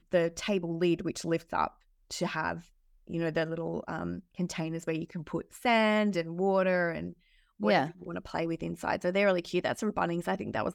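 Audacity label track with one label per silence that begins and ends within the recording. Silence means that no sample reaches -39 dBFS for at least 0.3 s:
1.680000	2.110000	silence
2.590000	3.100000	silence
7.110000	7.600000	silence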